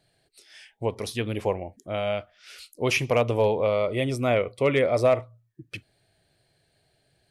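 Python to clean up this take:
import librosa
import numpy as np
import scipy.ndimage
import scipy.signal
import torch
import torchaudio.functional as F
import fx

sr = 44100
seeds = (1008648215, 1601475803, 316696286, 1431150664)

y = fx.fix_declip(x, sr, threshold_db=-12.0)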